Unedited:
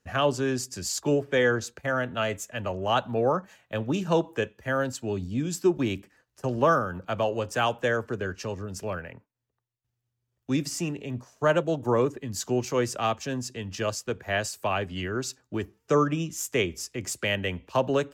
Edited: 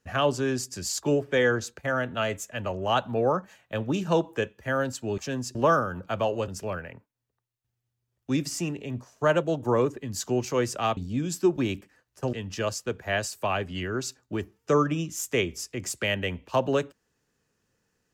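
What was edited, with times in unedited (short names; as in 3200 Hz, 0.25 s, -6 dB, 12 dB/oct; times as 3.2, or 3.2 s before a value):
5.18–6.54 swap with 13.17–13.54
7.47–8.68 cut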